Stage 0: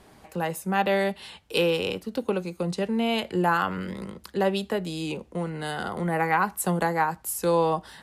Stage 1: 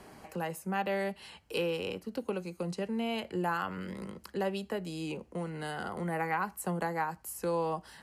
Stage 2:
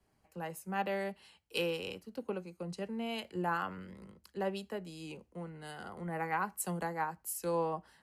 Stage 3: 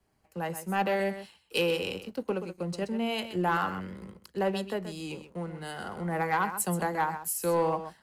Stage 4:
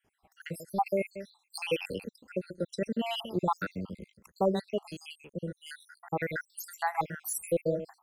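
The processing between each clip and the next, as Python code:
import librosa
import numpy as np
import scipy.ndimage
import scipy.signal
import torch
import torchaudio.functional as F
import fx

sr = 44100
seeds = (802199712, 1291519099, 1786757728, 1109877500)

y1 = fx.notch(x, sr, hz=3600.0, q=6.5)
y1 = fx.band_squash(y1, sr, depth_pct=40)
y1 = y1 * 10.0 ** (-8.5 / 20.0)
y2 = fx.band_widen(y1, sr, depth_pct=100)
y2 = y2 * 10.0 ** (-3.5 / 20.0)
y3 = y2 + 10.0 ** (-11.0 / 20.0) * np.pad(y2, (int(128 * sr / 1000.0), 0))[:len(y2)]
y3 = fx.leveller(y3, sr, passes=1)
y3 = y3 * 10.0 ** (3.5 / 20.0)
y4 = fx.spec_dropout(y3, sr, seeds[0], share_pct=74)
y4 = y4 * 10.0 ** (2.5 / 20.0)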